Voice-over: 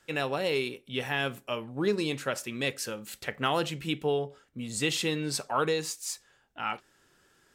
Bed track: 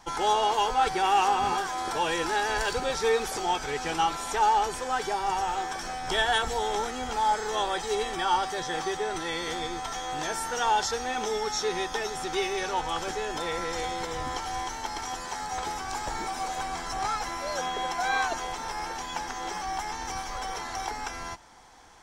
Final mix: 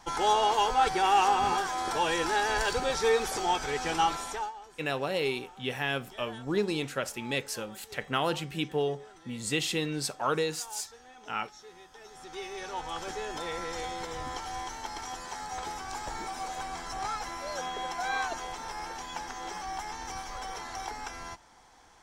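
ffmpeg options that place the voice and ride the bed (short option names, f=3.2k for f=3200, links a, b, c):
-filter_complex "[0:a]adelay=4700,volume=-1dB[a];[1:a]volume=17dB,afade=t=out:st=4.12:d=0.4:silence=0.0841395,afade=t=in:st=11.95:d=1.24:silence=0.133352[b];[a][b]amix=inputs=2:normalize=0"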